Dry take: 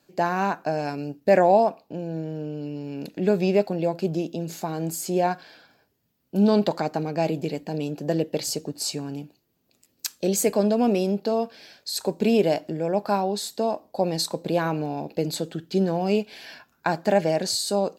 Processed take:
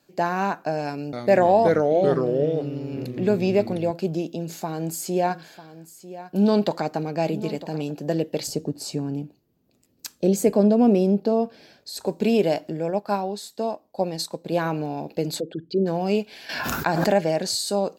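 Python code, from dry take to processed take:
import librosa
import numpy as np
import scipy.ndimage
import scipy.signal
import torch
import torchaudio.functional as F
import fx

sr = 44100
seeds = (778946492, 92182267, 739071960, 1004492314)

y = fx.echo_pitch(x, sr, ms=288, semitones=-3, count=2, db_per_echo=-3.0, at=(0.84, 3.91))
y = fx.echo_single(y, sr, ms=947, db=-15.5, at=(5.25, 7.9), fade=0.02)
y = fx.tilt_shelf(y, sr, db=6.0, hz=770.0, at=(8.47, 12.07))
y = fx.upward_expand(y, sr, threshold_db=-35.0, expansion=1.5, at=(12.9, 14.52))
y = fx.envelope_sharpen(y, sr, power=2.0, at=(15.39, 15.85), fade=0.02)
y = fx.pre_swell(y, sr, db_per_s=30.0, at=(16.49, 17.16))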